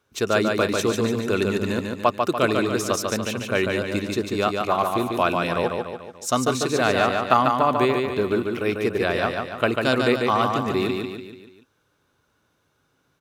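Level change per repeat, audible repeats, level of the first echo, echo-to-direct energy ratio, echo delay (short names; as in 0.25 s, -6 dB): -6.0 dB, 5, -4.0 dB, -3.0 dB, 0.145 s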